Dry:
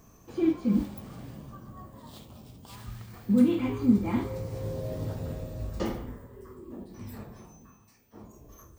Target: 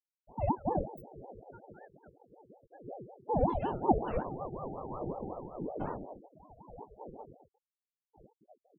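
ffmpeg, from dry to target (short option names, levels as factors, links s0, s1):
-af "afftfilt=real='re*gte(hypot(re,im),0.0282)':imag='im*gte(hypot(re,im),0.0282)':win_size=1024:overlap=0.75,flanger=delay=16:depth=5.7:speed=0.73,aeval=exprs='val(0)*sin(2*PI*460*n/s+460*0.5/5.4*sin(2*PI*5.4*n/s))':c=same"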